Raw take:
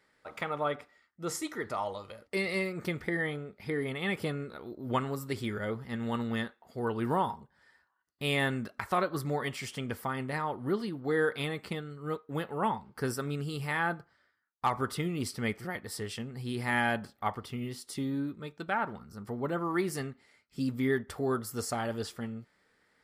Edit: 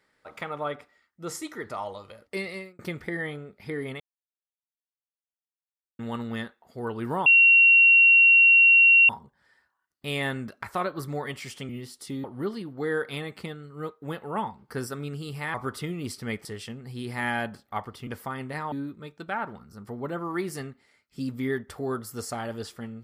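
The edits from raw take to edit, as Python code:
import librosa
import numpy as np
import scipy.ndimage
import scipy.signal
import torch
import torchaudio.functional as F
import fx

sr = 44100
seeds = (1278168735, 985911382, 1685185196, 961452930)

y = fx.edit(x, sr, fx.fade_out_span(start_s=2.36, length_s=0.43),
    fx.silence(start_s=4.0, length_s=1.99),
    fx.insert_tone(at_s=7.26, length_s=1.83, hz=2740.0, db=-12.5),
    fx.swap(start_s=9.86, length_s=0.65, other_s=17.57, other_length_s=0.55),
    fx.cut(start_s=13.81, length_s=0.89),
    fx.cut(start_s=15.61, length_s=0.34), tone=tone)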